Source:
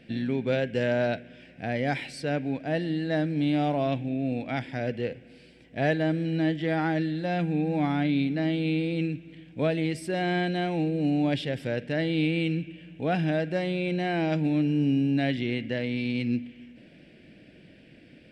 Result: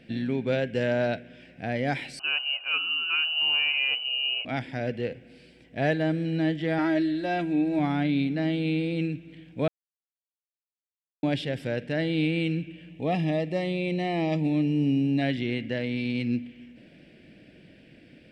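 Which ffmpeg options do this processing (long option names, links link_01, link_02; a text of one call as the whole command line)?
ffmpeg -i in.wav -filter_complex "[0:a]asettb=1/sr,asplit=3[link_01][link_02][link_03];[link_01]atrim=end=2.194[link_04];[link_02]atrim=start=2.19:end=4.45,asetpts=PTS-STARTPTS,afade=type=in:duration=0.004:curve=qsin,afade=type=out:start_time=2.256:duration=0.004:curve=qsin,lowpass=frequency=2600:width_type=q:width=0.5098,lowpass=frequency=2600:width_type=q:width=0.6013,lowpass=frequency=2600:width_type=q:width=0.9,lowpass=frequency=2600:width_type=q:width=2.563,afreqshift=-3100[link_05];[link_03]atrim=start=4.446[link_06];[link_04][link_05]acrossfade=duration=0.004:curve1=hsin:curve2=qsin[link_07];[link_07][link_06]acrossfade=duration=0.004:curve1=qsin:curve2=hsin,asettb=1/sr,asplit=3[link_08][link_09][link_10];[link_08]atrim=end=6.784[link_11];[link_09]atrim=start=6.78:end=7.79,asetpts=PTS-STARTPTS,afade=type=in:duration=0.004:curve=qsin,afade=type=out:start_time=1.006:duration=0.004:curve=qsin,aecho=1:1:3.1:0.65,atrim=end_sample=44541[link_12];[link_10]atrim=start=7.786[link_13];[link_11][link_12]acrossfade=duration=0.004:curve1=hsin:curve2=qsin[link_14];[link_14][link_13]acrossfade=duration=0.004:curve1=qsin:curve2=hsin,asettb=1/sr,asplit=3[link_15][link_16][link_17];[link_15]atrim=end=12.894[link_18];[link_16]atrim=start=12.89:end=15.22,asetpts=PTS-STARTPTS,afade=type=in:duration=0.004:curve=qsin,afade=type=out:start_time=2.326:duration=0.004:curve=qsin,asuperstop=centerf=1500:order=12:qfactor=4.2[link_19];[link_17]atrim=start=15.216[link_20];[link_18][link_19]acrossfade=duration=0.004:curve1=hsin:curve2=qsin[link_21];[link_21][link_20]acrossfade=duration=0.004:curve1=qsin:curve2=hsin,asplit=3[link_22][link_23][link_24];[link_22]atrim=end=9.68,asetpts=PTS-STARTPTS,afade=type=out:start_time=9.676:duration=0.004:curve=hsin[link_25];[link_23]atrim=start=9.68:end=11.23,asetpts=PTS-STARTPTS,volume=0[link_26];[link_24]atrim=start=11.23,asetpts=PTS-STARTPTS,afade=type=in:duration=0.004:curve=hsin[link_27];[link_25][link_26][link_27]concat=n=3:v=0:a=1" out.wav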